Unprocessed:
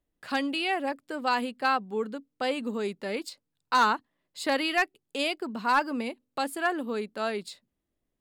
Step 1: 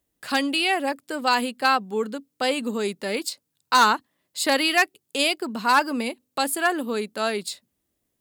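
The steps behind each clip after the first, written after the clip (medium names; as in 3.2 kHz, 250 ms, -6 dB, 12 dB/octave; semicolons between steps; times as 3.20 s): high-pass 54 Hz; treble shelf 4.8 kHz +11.5 dB; trim +4.5 dB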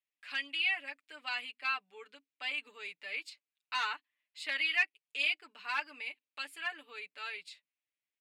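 band-pass filter 2.4 kHz, Q 3.5; comb 6.8 ms, depth 85%; trim -6 dB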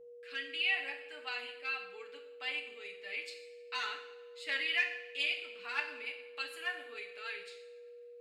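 rotary cabinet horn 0.8 Hz, later 6.7 Hz, at 3.93 s; whistle 480 Hz -54 dBFS; two-slope reverb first 0.73 s, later 2 s, from -17 dB, DRR 3.5 dB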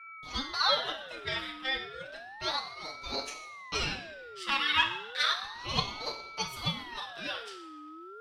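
ring modulator with a swept carrier 1.3 kHz, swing 40%, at 0.32 Hz; trim +8.5 dB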